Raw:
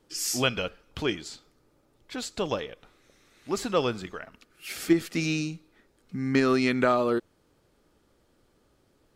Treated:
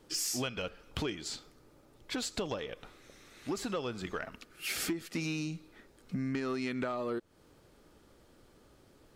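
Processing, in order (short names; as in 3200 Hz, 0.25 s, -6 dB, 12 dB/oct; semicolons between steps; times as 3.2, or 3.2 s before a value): compressor 12:1, threshold -35 dBFS, peak gain reduction 19.5 dB; soft clip -29 dBFS, distortion -21 dB; gain +4.5 dB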